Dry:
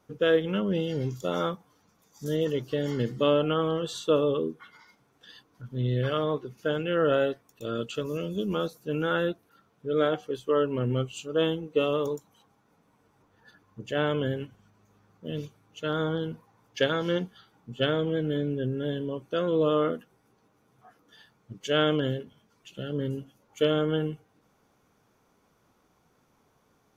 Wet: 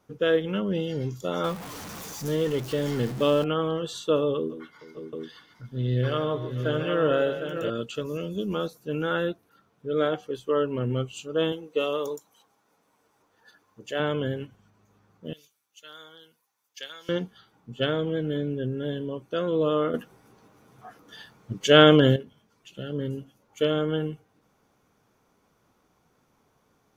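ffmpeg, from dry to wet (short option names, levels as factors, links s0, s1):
-filter_complex "[0:a]asettb=1/sr,asplit=3[s0][s1][s2];[s0]atrim=end=1.444[s3];[s1]atrim=start=1.44:end=3.44,asetpts=PTS-STARTPTS,afade=t=in:d=0.004:c=qsin,afade=t=out:st=1.996:d=0.004:c=qsin,aeval=exprs='val(0)+0.5*0.0211*sgn(val(0))':c=same[s4];[s2]atrim=start=3.436[s5];[s3][s4]acrossfade=d=0.004:c1=hsin:c2=qsin[s6];[s6][s5]acrossfade=d=0.004:c1=qsin:c2=hsin,asettb=1/sr,asplit=3[s7][s8][s9];[s7]atrim=end=4.374[s10];[s8]atrim=start=4.37:end=7.7,asetpts=PTS-STARTPTS,afade=t=in:d=0.004:c=qsin,afade=t=out:st=3.326:d=0.004:c=qsin,aecho=1:1:128|144|442|579|597|757:0.15|0.266|0.112|0.126|0.299|0.473,atrim=end_sample=146853[s11];[s9]atrim=start=7.696[s12];[s10][s11]acrossfade=d=0.004:c1=hsin:c2=qsin[s13];[s13][s12]acrossfade=d=0.004:c1=qsin:c2=hsin,asettb=1/sr,asplit=3[s14][s15][s16];[s14]atrim=end=11.524[s17];[s15]atrim=start=11.52:end=14,asetpts=PTS-STARTPTS,afade=t=in:d=0.004:c=qsin,afade=t=out:st=2.476:d=0.004:c=qsin,bass=f=250:g=-12,treble=f=4000:g=5[s18];[s16]atrim=start=13.996[s19];[s17][s18]acrossfade=d=0.004:c1=hsin:c2=qsin[s20];[s20][s19]acrossfade=d=0.004:c1=qsin:c2=hsin,asettb=1/sr,asplit=3[s21][s22][s23];[s21]atrim=end=15.334[s24];[s22]atrim=start=15.33:end=17.09,asetpts=PTS-STARTPTS,afade=t=in:d=0.004:c=qsin,afade=t=out:st=1.756:d=0.004:c=qsin,aderivative[s25];[s23]atrim=start=17.086[s26];[s24][s25]acrossfade=d=0.004:c1=hsin:c2=qsin[s27];[s27][s26]acrossfade=d=0.004:c1=qsin:c2=hsin,asplit=3[s28][s29][s30];[s28]atrim=end=19.942[s31];[s29]atrim=start=19.938:end=22.162,asetpts=PTS-STARTPTS,volume=2.99[s32];[s30]atrim=start=22.158[s33];[s31][s32]acrossfade=d=0.004:c1=hsin:c2=hsin[s34];[s34][s33]acrossfade=d=0.004:c1=hsin:c2=hsin"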